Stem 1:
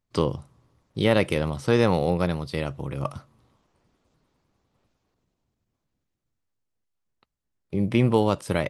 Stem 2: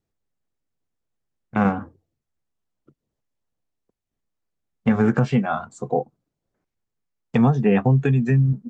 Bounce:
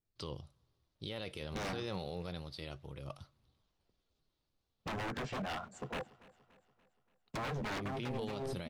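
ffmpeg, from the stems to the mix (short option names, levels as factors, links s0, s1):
-filter_complex "[0:a]equalizer=f=125:t=o:w=1:g=-5,equalizer=f=250:t=o:w=1:g=-8,equalizer=f=500:t=o:w=1:g=-4,equalizer=f=1000:t=o:w=1:g=-7,equalizer=f=2000:t=o:w=1:g=-6,equalizer=f=4000:t=o:w=1:g=7,equalizer=f=8000:t=o:w=1:g=-8,flanger=delay=0.2:depth=5.7:regen=76:speed=0.29:shape=triangular,adelay=50,volume=0.596[s0];[1:a]aeval=exprs='0.075*(abs(mod(val(0)/0.075+3,4)-2)-1)':c=same,volume=0.282,asplit=2[s1][s2];[s2]volume=0.0841,aecho=0:1:288|576|864|1152|1440|1728|2016:1|0.51|0.26|0.133|0.0677|0.0345|0.0176[s3];[s0][s1][s3]amix=inputs=3:normalize=0,alimiter=level_in=2.11:limit=0.0631:level=0:latency=1:release=48,volume=0.473"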